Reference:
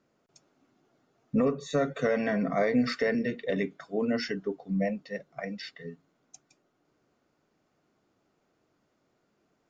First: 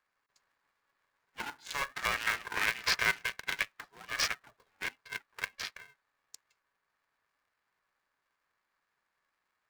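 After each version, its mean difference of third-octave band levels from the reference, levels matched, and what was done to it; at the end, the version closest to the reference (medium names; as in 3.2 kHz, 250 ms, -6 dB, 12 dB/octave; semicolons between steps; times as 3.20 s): 14.5 dB: local Wiener filter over 15 samples; high-pass 1.4 kHz 24 dB/octave; polarity switched at an audio rate 280 Hz; trim +7.5 dB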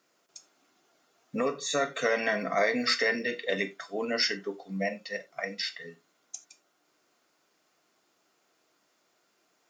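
6.5 dB: high-pass 850 Hz 6 dB/octave; treble shelf 3.5 kHz +8.5 dB; gated-style reverb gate 110 ms falling, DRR 9 dB; trim +4.5 dB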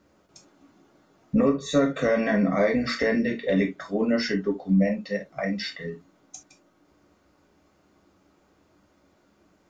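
2.5 dB: peaking EQ 68 Hz +9 dB 1.1 oct; in parallel at +2.5 dB: compression, threshold -36 dBFS, peak gain reduction 15 dB; on the sum: gated-style reverb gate 90 ms falling, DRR 1.5 dB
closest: third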